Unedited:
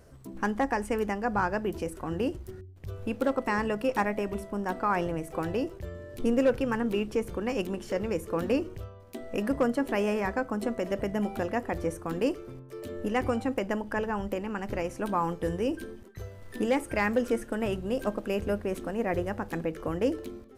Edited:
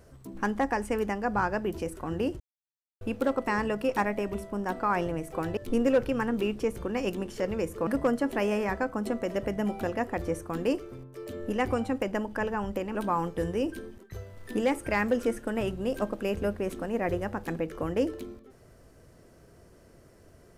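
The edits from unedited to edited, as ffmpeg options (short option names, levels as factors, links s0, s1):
-filter_complex "[0:a]asplit=6[s0][s1][s2][s3][s4][s5];[s0]atrim=end=2.4,asetpts=PTS-STARTPTS,afade=t=out:st=2.396:d=0.004:c=hsin[s6];[s1]atrim=start=2.4:end=3.01,asetpts=PTS-STARTPTS,volume=0[s7];[s2]atrim=start=3.01:end=5.572,asetpts=PTS-STARTPTS,afade=t=in:d=0.004:c=hsin[s8];[s3]atrim=start=6.088:end=8.392[s9];[s4]atrim=start=9.428:end=14.512[s10];[s5]atrim=start=14.998[s11];[s6][s7][s8]concat=n=3:v=0:a=1[s12];[s12][s9]acrossfade=d=0.004:c1=hsin:c2=hsin[s13];[s13][s10]acrossfade=d=0.004:c1=hsin:c2=hsin[s14];[s14][s11]acrossfade=d=0.004:c1=hsin:c2=hsin"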